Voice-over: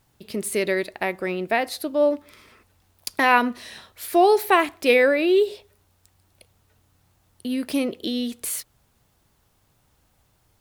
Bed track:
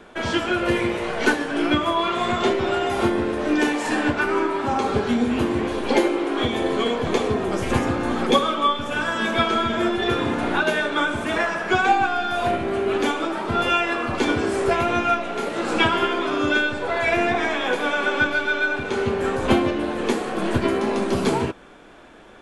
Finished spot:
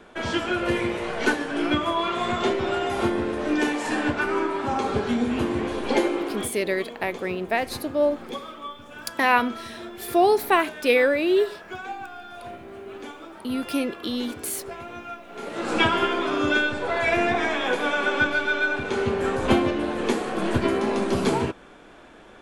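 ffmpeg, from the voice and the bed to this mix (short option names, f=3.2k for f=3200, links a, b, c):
-filter_complex "[0:a]adelay=6000,volume=-2dB[a];[1:a]volume=12dB,afade=t=out:st=6.19:d=0.35:silence=0.211349,afade=t=in:st=15.27:d=0.5:silence=0.177828[b];[a][b]amix=inputs=2:normalize=0"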